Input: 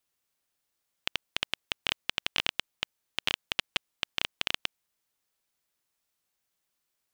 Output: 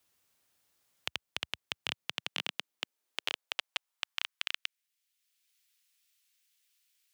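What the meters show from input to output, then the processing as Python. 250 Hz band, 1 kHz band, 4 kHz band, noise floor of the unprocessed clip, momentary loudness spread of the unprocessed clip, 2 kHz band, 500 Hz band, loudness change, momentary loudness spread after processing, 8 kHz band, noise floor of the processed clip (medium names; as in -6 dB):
-7.5 dB, -5.0 dB, -5.0 dB, -82 dBFS, 6 LU, -5.0 dB, -6.0 dB, -5.0 dB, 5 LU, -4.5 dB, under -85 dBFS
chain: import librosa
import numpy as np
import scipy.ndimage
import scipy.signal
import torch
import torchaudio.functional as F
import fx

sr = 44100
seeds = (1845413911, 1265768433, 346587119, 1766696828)

y = fx.filter_sweep_highpass(x, sr, from_hz=70.0, to_hz=2500.0, start_s=1.53, end_s=4.99, q=1.2)
y = fx.band_squash(y, sr, depth_pct=40)
y = y * 10.0 ** (-5.5 / 20.0)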